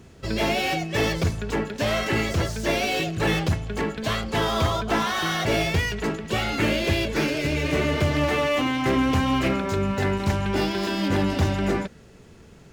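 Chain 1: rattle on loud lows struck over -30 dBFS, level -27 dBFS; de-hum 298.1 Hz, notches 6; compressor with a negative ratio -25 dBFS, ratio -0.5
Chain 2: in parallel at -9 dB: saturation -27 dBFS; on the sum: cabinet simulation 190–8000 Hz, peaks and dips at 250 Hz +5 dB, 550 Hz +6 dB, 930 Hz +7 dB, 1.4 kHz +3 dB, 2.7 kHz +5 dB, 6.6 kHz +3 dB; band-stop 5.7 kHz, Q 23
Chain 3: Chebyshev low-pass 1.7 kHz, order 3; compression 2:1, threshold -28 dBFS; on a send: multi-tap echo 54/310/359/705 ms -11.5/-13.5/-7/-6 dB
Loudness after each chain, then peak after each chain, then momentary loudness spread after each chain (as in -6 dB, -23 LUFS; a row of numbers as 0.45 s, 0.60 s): -26.0 LUFS, -20.5 LUFS, -28.0 LUFS; -11.5 dBFS, -7.5 dBFS, -13.5 dBFS; 4 LU, 6 LU, 3 LU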